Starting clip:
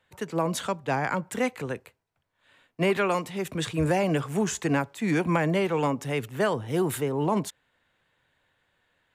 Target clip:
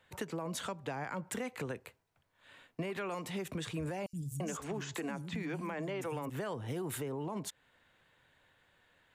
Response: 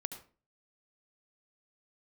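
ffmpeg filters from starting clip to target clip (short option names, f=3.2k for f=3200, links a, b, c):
-filter_complex "[0:a]alimiter=limit=-22.5dB:level=0:latency=1:release=104,asettb=1/sr,asplit=3[a][b][c];[a]atrim=end=4.064[d];[b]atrim=start=4.06:end=6.3,asetpts=PTS-STARTPTS,afade=t=in:d=0.004:c=qsin,afade=t=out:st=2.236:d=0.004:c=qsin,acrossover=split=200|5600[e][f][g];[e]adelay=70[h];[f]adelay=340[i];[h][i][g]amix=inputs=3:normalize=0,atrim=end_sample=98784[j];[c]atrim=start=6.296[k];[d][j]acrossfade=d=0.004:c1=hsin:c2=qsin[l];[l][k]acrossfade=d=0.004:c1=qsin:c2=hsin,acompressor=threshold=-39dB:ratio=4,volume=2dB"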